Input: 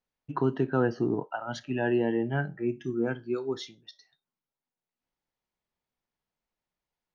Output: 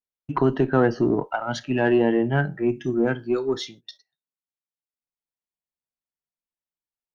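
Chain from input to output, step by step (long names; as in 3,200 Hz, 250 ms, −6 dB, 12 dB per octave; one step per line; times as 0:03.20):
one-sided soft clipper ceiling −16 dBFS
noise gate −53 dBFS, range −22 dB
level +8 dB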